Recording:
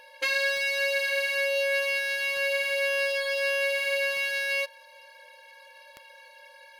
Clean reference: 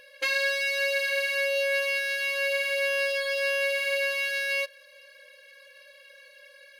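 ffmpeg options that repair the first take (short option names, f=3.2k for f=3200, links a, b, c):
-af "adeclick=t=4,bandreject=f=910:w=30"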